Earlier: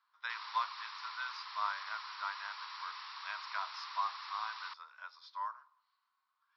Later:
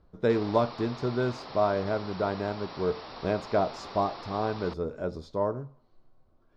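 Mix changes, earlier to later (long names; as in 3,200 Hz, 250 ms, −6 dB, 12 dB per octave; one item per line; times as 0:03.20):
speech: remove Chebyshev low-pass filter 5,400 Hz, order 5
master: remove Chebyshev high-pass filter 1,000 Hz, order 5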